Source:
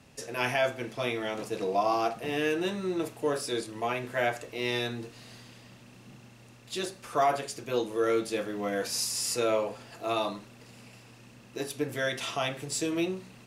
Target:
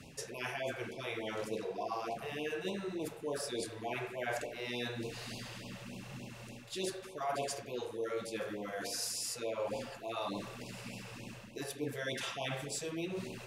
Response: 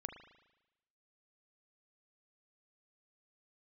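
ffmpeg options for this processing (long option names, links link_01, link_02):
-filter_complex "[0:a]areverse,acompressor=threshold=-42dB:ratio=5,areverse[link_01];[1:a]atrim=start_sample=2205[link_02];[link_01][link_02]afir=irnorm=-1:irlink=0,afftfilt=real='re*(1-between(b*sr/1024,220*pow(1600/220,0.5+0.5*sin(2*PI*3.4*pts/sr))/1.41,220*pow(1600/220,0.5+0.5*sin(2*PI*3.4*pts/sr))*1.41))':imag='im*(1-between(b*sr/1024,220*pow(1600/220,0.5+0.5*sin(2*PI*3.4*pts/sr))/1.41,220*pow(1600/220,0.5+0.5*sin(2*PI*3.4*pts/sr))*1.41))':win_size=1024:overlap=0.75,volume=9dB"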